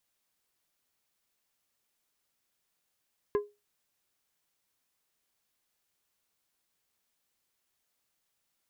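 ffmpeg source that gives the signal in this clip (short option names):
-f lavfi -i "aevalsrc='0.0891*pow(10,-3*t/0.24)*sin(2*PI*413*t)+0.0316*pow(10,-3*t/0.126)*sin(2*PI*1032.5*t)+0.0112*pow(10,-3*t/0.091)*sin(2*PI*1652*t)+0.00398*pow(10,-3*t/0.078)*sin(2*PI*2065*t)+0.00141*pow(10,-3*t/0.065)*sin(2*PI*2684.5*t)':d=0.89:s=44100"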